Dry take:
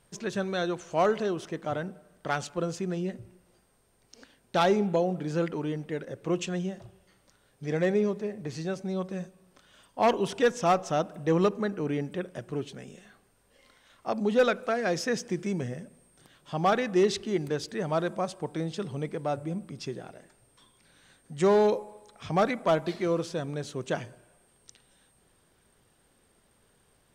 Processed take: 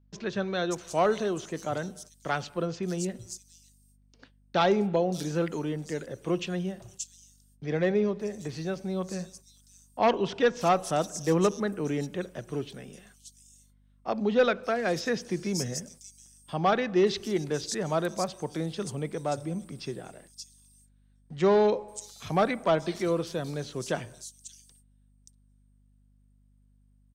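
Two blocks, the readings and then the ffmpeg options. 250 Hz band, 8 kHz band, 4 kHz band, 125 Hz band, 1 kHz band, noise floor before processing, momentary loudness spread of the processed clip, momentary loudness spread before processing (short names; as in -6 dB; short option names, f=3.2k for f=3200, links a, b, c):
0.0 dB, +4.5 dB, +1.5 dB, 0.0 dB, 0.0 dB, -66 dBFS, 17 LU, 14 LU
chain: -filter_complex "[0:a]agate=range=-25dB:threshold=-53dB:ratio=16:detection=peak,acrossover=split=160|750|4400[a][b][c][d];[d]acontrast=86[e];[a][b][c][e]amix=inputs=4:normalize=0,aeval=exprs='val(0)+0.000891*(sin(2*PI*50*n/s)+sin(2*PI*2*50*n/s)/2+sin(2*PI*3*50*n/s)/3+sin(2*PI*4*50*n/s)/4+sin(2*PI*5*50*n/s)/5)':c=same,acrossover=split=4900[f][g];[g]adelay=580[h];[f][h]amix=inputs=2:normalize=0"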